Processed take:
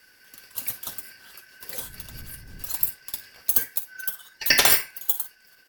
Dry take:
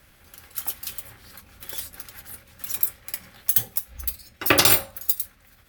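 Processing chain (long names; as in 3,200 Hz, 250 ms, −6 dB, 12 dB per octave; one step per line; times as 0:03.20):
band-splitting scrambler in four parts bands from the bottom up 3142
0:01.78–0:02.88: wind on the microphone 100 Hz −46 dBFS
ambience of single reflections 47 ms −16.5 dB, 58 ms −17 dB
level −1 dB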